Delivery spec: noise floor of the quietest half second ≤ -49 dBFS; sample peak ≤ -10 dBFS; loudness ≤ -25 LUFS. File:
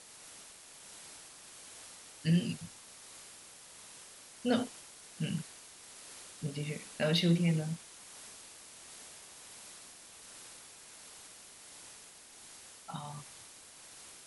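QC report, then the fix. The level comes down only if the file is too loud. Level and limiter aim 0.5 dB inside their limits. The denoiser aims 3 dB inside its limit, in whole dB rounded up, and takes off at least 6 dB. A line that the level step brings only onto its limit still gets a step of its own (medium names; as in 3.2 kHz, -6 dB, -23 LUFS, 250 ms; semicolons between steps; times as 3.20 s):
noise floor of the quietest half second -54 dBFS: pass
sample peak -17.5 dBFS: pass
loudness -36.5 LUFS: pass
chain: none needed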